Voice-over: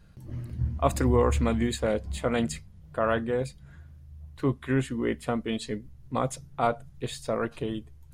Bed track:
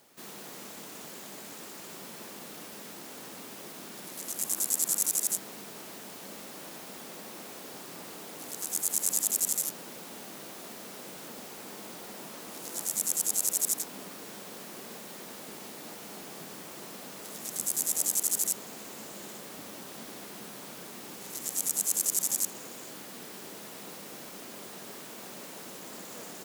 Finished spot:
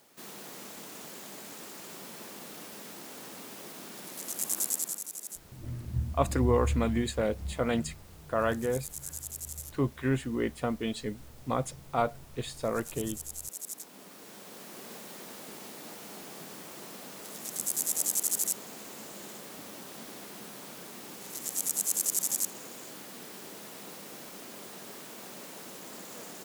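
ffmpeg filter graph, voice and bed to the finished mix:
-filter_complex "[0:a]adelay=5350,volume=-2.5dB[a];[1:a]volume=11dB,afade=t=out:st=4.62:d=0.41:silence=0.251189,afade=t=in:st=13.65:d=1.27:silence=0.266073[b];[a][b]amix=inputs=2:normalize=0"

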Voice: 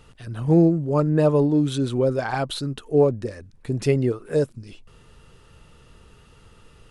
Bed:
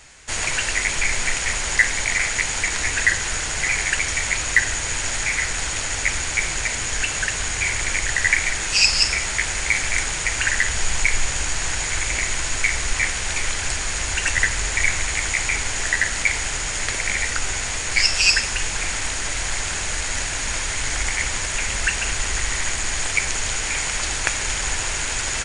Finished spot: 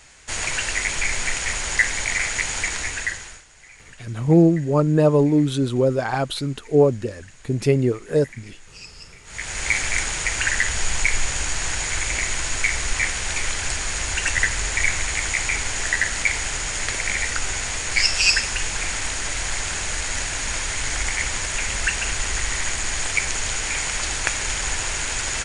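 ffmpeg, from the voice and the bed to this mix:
-filter_complex "[0:a]adelay=3800,volume=2dB[a];[1:a]volume=22.5dB,afade=t=out:st=2.64:d=0.8:silence=0.0668344,afade=t=in:st=9.24:d=0.46:silence=0.0595662[b];[a][b]amix=inputs=2:normalize=0"

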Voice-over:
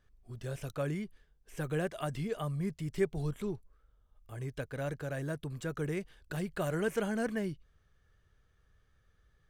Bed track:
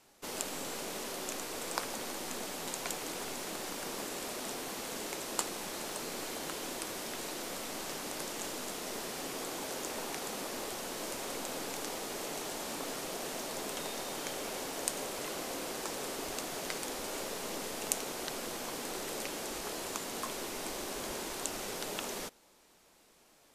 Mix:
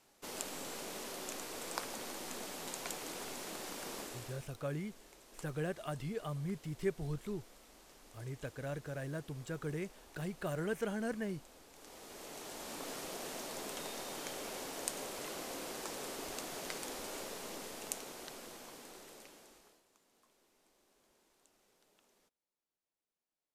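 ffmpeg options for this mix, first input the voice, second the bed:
-filter_complex "[0:a]adelay=3850,volume=-4.5dB[a];[1:a]volume=11.5dB,afade=t=out:st=3.96:d=0.52:silence=0.158489,afade=t=in:st=11.72:d=1.21:silence=0.158489,afade=t=out:st=16.96:d=2.87:silence=0.0354813[b];[a][b]amix=inputs=2:normalize=0"

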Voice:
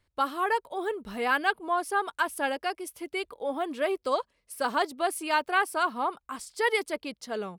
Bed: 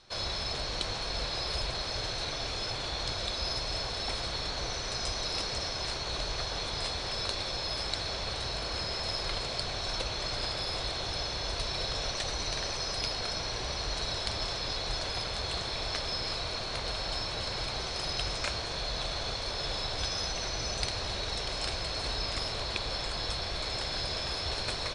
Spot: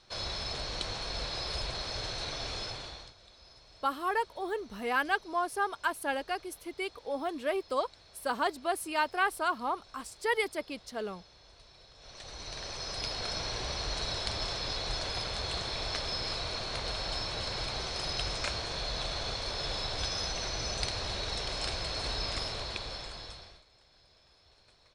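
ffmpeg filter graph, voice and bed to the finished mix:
-filter_complex "[0:a]adelay=3650,volume=-3.5dB[a];[1:a]volume=20dB,afade=t=out:st=2.57:d=0.56:silence=0.0891251,afade=t=in:st=11.97:d=1.4:silence=0.0749894,afade=t=out:st=22.33:d=1.31:silence=0.0375837[b];[a][b]amix=inputs=2:normalize=0"

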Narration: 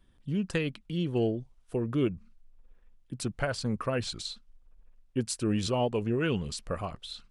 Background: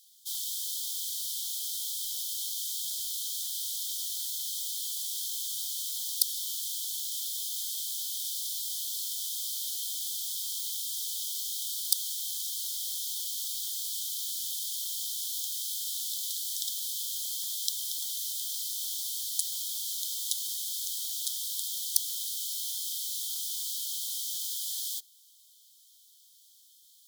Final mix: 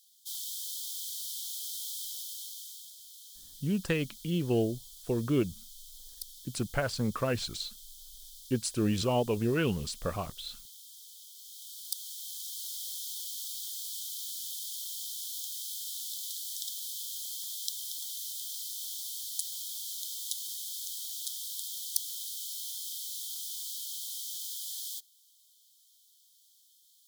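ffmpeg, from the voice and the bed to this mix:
-filter_complex "[0:a]adelay=3350,volume=0dB[a];[1:a]volume=8dB,afade=t=out:st=1.99:d=0.95:silence=0.237137,afade=t=in:st=11.35:d=1.38:silence=0.251189[b];[a][b]amix=inputs=2:normalize=0"

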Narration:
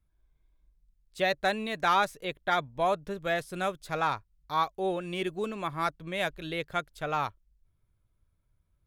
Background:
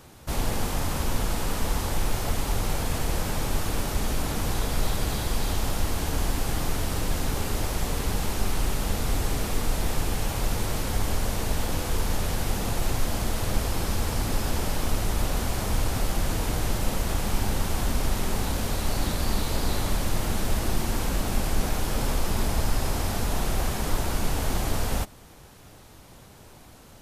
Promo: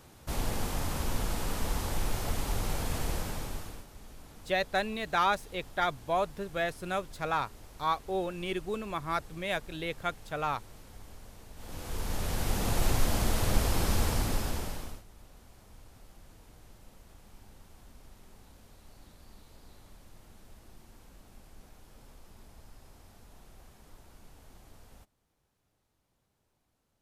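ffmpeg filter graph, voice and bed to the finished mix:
-filter_complex "[0:a]adelay=3300,volume=-2dB[a];[1:a]volume=17dB,afade=t=out:st=3.07:d=0.79:silence=0.125893,afade=t=in:st=11.55:d=1.28:silence=0.0749894,afade=t=out:st=14.02:d=1.01:silence=0.0421697[b];[a][b]amix=inputs=2:normalize=0"

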